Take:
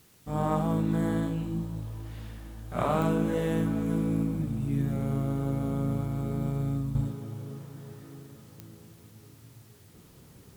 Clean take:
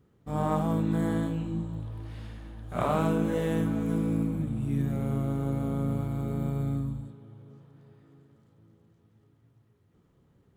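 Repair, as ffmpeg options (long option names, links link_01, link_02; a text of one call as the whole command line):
ffmpeg -i in.wav -af "adeclick=threshold=4,agate=range=-21dB:threshold=-45dB,asetnsamples=nb_out_samples=441:pad=0,asendcmd='6.95 volume volume -10.5dB',volume=0dB" out.wav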